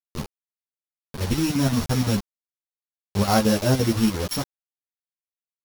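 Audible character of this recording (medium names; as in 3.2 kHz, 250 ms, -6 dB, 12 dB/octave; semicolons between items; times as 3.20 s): a buzz of ramps at a fixed pitch in blocks of 8 samples; chopped level 5.8 Hz, depth 65%, duty 70%; a quantiser's noise floor 6-bit, dither none; a shimmering, thickened sound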